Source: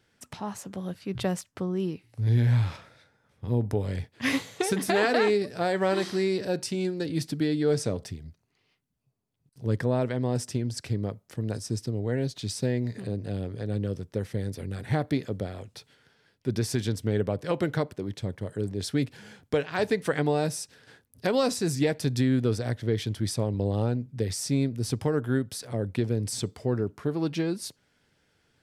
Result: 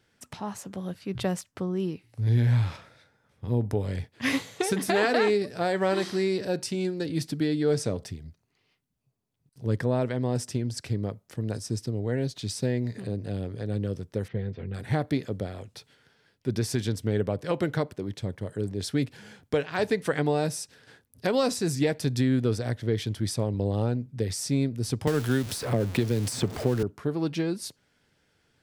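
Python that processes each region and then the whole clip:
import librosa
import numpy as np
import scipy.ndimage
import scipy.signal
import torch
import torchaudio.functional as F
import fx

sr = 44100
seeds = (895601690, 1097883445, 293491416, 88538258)

y = fx.chain(x, sr, fx.lowpass(hz=3300.0, slope=24),
    fx.notch_comb(f0_hz=290.0), at=(14.28, 14.74))
y = fx.chain(y, sr, fx.zero_step(step_db=-37.5),
    fx.band_squash(depth_pct=100), at=(25.07, 26.83))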